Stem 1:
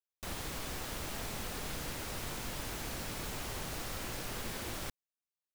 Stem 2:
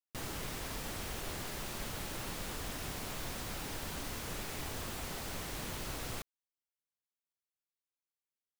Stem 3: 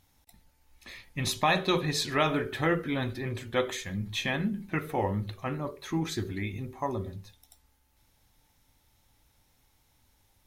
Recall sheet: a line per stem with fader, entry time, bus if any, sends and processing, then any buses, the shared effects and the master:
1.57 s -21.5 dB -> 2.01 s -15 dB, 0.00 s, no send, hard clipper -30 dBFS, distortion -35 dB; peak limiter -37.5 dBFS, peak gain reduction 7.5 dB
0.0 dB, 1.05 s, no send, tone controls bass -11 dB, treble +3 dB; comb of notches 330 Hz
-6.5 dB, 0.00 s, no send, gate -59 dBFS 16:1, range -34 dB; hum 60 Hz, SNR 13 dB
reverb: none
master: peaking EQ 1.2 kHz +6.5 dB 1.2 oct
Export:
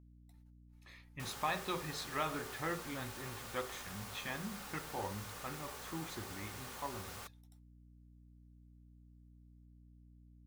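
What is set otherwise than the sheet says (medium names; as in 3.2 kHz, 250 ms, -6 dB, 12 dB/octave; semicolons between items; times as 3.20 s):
stem 1: muted; stem 2 0.0 dB -> -7.5 dB; stem 3 -6.5 dB -> -14.5 dB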